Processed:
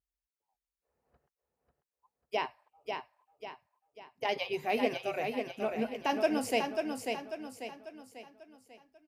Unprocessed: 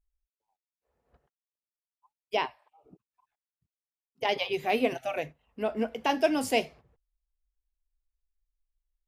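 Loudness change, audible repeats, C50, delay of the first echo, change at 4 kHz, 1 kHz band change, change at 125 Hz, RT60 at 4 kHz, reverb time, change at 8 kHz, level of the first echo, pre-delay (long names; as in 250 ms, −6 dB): −4.5 dB, 5, no reverb audible, 543 ms, −4.0 dB, −2.5 dB, −2.5 dB, no reverb audible, no reverb audible, −2.5 dB, −5.0 dB, no reverb audible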